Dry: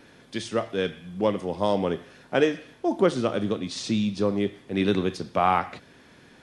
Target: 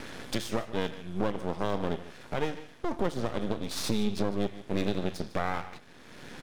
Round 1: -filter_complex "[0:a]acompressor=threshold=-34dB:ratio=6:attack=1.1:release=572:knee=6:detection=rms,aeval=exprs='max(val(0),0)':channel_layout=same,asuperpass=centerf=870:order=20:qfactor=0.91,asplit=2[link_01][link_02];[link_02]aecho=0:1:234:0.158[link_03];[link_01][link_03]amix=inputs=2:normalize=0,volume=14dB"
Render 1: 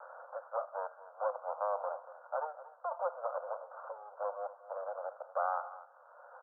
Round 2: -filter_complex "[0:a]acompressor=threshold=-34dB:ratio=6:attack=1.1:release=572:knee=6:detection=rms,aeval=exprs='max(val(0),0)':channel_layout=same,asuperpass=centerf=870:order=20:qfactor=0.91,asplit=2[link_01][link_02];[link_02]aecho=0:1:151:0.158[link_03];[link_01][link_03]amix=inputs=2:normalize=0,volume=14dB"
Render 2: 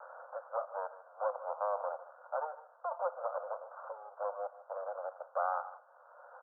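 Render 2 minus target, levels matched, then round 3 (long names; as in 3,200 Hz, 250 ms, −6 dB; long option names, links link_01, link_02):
1,000 Hz band +6.5 dB
-filter_complex "[0:a]acompressor=threshold=-34dB:ratio=6:attack=1.1:release=572:knee=6:detection=rms,aeval=exprs='max(val(0),0)':channel_layout=same,asplit=2[link_01][link_02];[link_02]aecho=0:1:151:0.158[link_03];[link_01][link_03]amix=inputs=2:normalize=0,volume=14dB"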